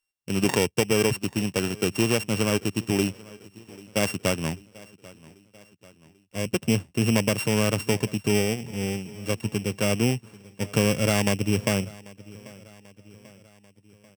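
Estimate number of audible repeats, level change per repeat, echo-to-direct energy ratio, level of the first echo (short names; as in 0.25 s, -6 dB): 3, -5.0 dB, -20.5 dB, -22.0 dB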